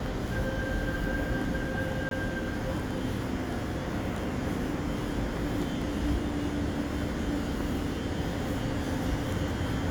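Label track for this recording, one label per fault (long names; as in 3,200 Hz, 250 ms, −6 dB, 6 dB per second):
2.090000	2.110000	drop-out 22 ms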